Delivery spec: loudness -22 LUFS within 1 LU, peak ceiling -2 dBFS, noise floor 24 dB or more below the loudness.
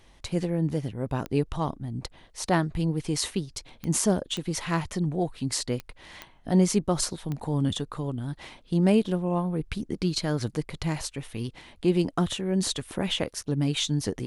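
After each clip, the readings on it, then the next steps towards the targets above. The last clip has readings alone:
clicks found 6; loudness -28.0 LUFS; peak level -9.0 dBFS; loudness target -22.0 LUFS
-> de-click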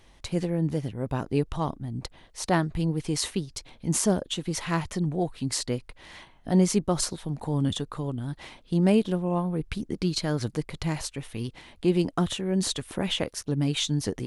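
clicks found 0; loudness -28.0 LUFS; peak level -9.0 dBFS; loudness target -22.0 LUFS
-> trim +6 dB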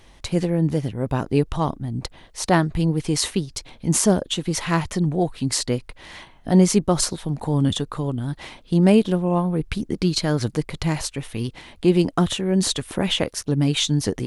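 loudness -22.0 LUFS; peak level -3.0 dBFS; noise floor -50 dBFS

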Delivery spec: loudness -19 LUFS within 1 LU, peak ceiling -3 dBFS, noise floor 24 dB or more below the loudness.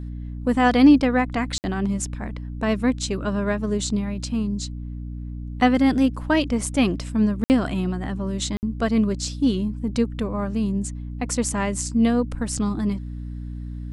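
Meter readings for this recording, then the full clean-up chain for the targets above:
dropouts 3; longest dropout 59 ms; hum 60 Hz; highest harmonic 300 Hz; hum level -30 dBFS; loudness -22.5 LUFS; peak level -5.0 dBFS; loudness target -19.0 LUFS
-> interpolate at 1.58/7.44/8.57 s, 59 ms; de-hum 60 Hz, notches 5; trim +3.5 dB; peak limiter -3 dBFS

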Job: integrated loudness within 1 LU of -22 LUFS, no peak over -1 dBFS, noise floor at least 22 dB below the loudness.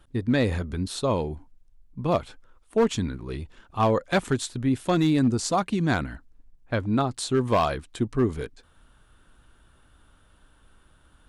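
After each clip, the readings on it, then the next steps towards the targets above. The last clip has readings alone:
clipped samples 0.5%; clipping level -14.5 dBFS; loudness -25.5 LUFS; peak level -14.5 dBFS; loudness target -22.0 LUFS
-> clip repair -14.5 dBFS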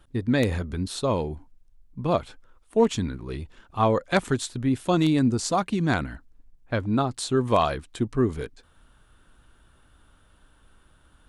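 clipped samples 0.0%; loudness -25.5 LUFS; peak level -6.0 dBFS; loudness target -22.0 LUFS
-> trim +3.5 dB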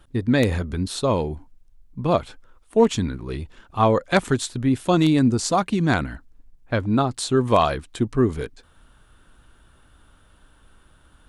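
loudness -22.0 LUFS; peak level -2.5 dBFS; noise floor -56 dBFS

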